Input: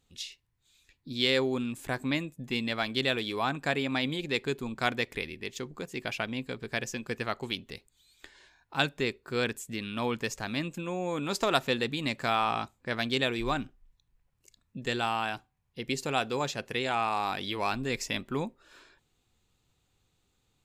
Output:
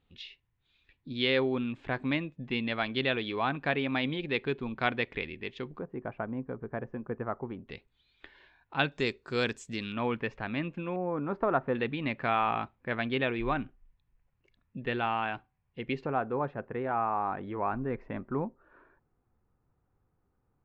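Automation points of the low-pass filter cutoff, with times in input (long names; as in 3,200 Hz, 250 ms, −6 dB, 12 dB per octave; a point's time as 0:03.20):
low-pass filter 24 dB per octave
3,300 Hz
from 0:05.79 1,300 Hz
from 0:07.68 3,300 Hz
from 0:08.92 6,500 Hz
from 0:09.92 2,700 Hz
from 0:10.96 1,500 Hz
from 0:11.75 2,700 Hz
from 0:16.06 1,500 Hz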